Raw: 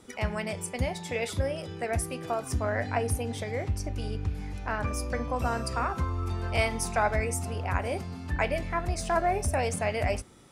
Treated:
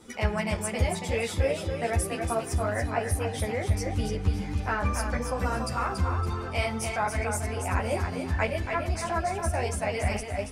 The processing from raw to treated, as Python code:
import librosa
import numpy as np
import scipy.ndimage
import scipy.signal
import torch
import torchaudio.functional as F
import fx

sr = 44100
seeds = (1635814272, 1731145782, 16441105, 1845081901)

p1 = fx.rider(x, sr, range_db=10, speed_s=0.5)
p2 = p1 + fx.echo_feedback(p1, sr, ms=282, feedback_pct=33, wet_db=-6.0, dry=0)
p3 = fx.ensemble(p2, sr)
y = F.gain(torch.from_numpy(p3), 3.5).numpy()